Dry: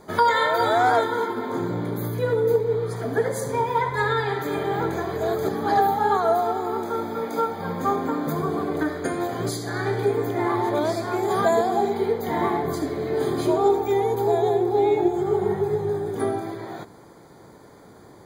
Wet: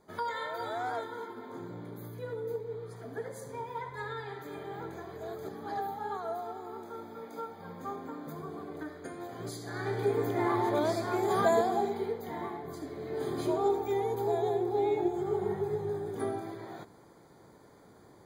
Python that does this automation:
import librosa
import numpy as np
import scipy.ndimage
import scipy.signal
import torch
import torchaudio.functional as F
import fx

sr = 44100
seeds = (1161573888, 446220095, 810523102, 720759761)

y = fx.gain(x, sr, db=fx.line((9.18, -16.0), (10.21, -5.5), (11.59, -5.5), (12.59, -16.5), (13.4, -9.0)))